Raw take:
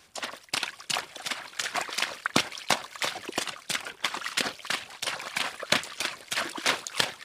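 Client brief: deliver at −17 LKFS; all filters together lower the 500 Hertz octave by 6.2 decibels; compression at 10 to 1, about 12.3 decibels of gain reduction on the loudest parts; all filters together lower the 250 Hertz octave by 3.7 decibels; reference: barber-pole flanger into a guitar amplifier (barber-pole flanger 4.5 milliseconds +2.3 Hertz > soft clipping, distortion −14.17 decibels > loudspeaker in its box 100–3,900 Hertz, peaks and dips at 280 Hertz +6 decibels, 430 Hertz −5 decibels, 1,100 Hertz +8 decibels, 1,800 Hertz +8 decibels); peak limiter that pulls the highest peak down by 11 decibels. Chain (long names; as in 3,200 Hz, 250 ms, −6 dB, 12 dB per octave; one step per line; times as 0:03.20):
parametric band 250 Hz −6 dB
parametric band 500 Hz −6.5 dB
downward compressor 10 to 1, threshold −34 dBFS
brickwall limiter −26 dBFS
barber-pole flanger 4.5 ms +2.3 Hz
soft clipping −38 dBFS
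loudspeaker in its box 100–3,900 Hz, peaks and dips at 280 Hz +6 dB, 430 Hz −5 dB, 1,100 Hz +8 dB, 1,800 Hz +8 dB
level +27 dB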